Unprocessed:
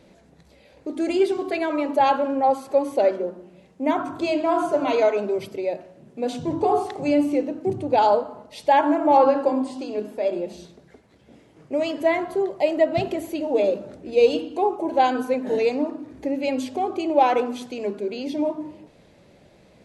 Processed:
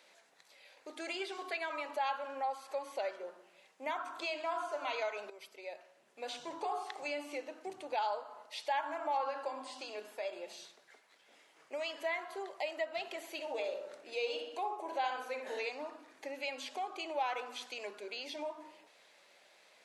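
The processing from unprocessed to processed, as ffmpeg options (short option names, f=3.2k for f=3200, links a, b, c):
-filter_complex "[0:a]asettb=1/sr,asplit=3[a][b][c];[a]atrim=end=13.274[d];[b]atrim=start=13.27:end=15.7,asetpts=PTS-STARTPTS,afade=t=in:d=0.004:c=qsin,afade=t=out:st=2.426:d=0.004:c=qsin,asplit=2[e][f];[f]adelay=61,lowpass=f=2k:p=1,volume=-5dB,asplit=2[g][h];[h]adelay=61,lowpass=f=2k:p=1,volume=0.48,asplit=2[i][j];[j]adelay=61,lowpass=f=2k:p=1,volume=0.48,asplit=2[k][l];[l]adelay=61,lowpass=f=2k:p=1,volume=0.48,asplit=2[m][n];[n]adelay=61,lowpass=f=2k:p=1,volume=0.48,asplit=2[o][p];[p]adelay=61,lowpass=f=2k:p=1,volume=0.48[q];[e][g][i][k][m][o][q]amix=inputs=7:normalize=0,atrim=end_sample=107163[r];[c]atrim=start=15.696[s];[d][r]acrossfade=d=0.004:c1=hsin:c2=qsin[t];[t][s]acrossfade=d=0.004:c1=qsin:c2=hsin,asplit=2[u][v];[u]atrim=end=5.3,asetpts=PTS-STARTPTS,afade=t=out:st=5.296:d=0.004:c=hsin:silence=0.211349[w];[v]atrim=start=5.3,asetpts=PTS-STARTPTS,afade=t=in:d=1.1:silence=0.211349[x];[w][x]concat=n=2:v=0:a=1,acrossover=split=5500[y][z];[z]acompressor=threshold=-54dB:ratio=4:attack=1:release=60[aa];[y][aa]amix=inputs=2:normalize=0,highpass=1.1k,acompressor=threshold=-38dB:ratio=2,volume=-1dB"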